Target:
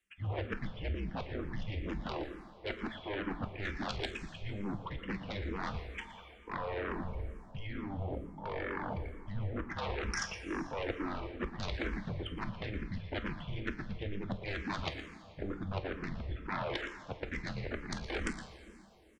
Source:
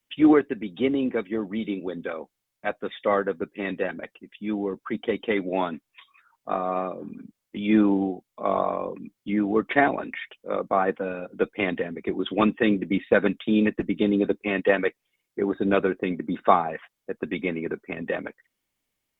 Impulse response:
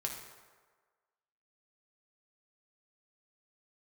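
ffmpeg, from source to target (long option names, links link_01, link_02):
-filter_complex "[0:a]aemphasis=mode=reproduction:type=75fm,acrossover=split=2700[link_01][link_02];[link_02]acompressor=threshold=-49dB:ratio=4:attack=1:release=60[link_03];[link_01][link_03]amix=inputs=2:normalize=0,highshelf=frequency=2700:gain=7.5,areverse,acompressor=threshold=-34dB:ratio=12,areverse,afreqshift=-200,aeval=exprs='0.0944*(cos(1*acos(clip(val(0)/0.0944,-1,1)))-cos(1*PI/2))+0.0473*(cos(7*acos(clip(val(0)/0.0944,-1,1)))-cos(7*PI/2))':channel_layout=same,asplit=2[link_04][link_05];[link_05]adelay=116.6,volume=-12dB,highshelf=frequency=4000:gain=-2.62[link_06];[link_04][link_06]amix=inputs=2:normalize=0,asplit=2[link_07][link_08];[1:a]atrim=start_sample=2205,asetrate=22050,aresample=44100,highshelf=frequency=3100:gain=9.5[link_09];[link_08][link_09]afir=irnorm=-1:irlink=0,volume=-9dB[link_10];[link_07][link_10]amix=inputs=2:normalize=0,asplit=2[link_11][link_12];[link_12]afreqshift=-2.2[link_13];[link_11][link_13]amix=inputs=2:normalize=1,volume=-3.5dB"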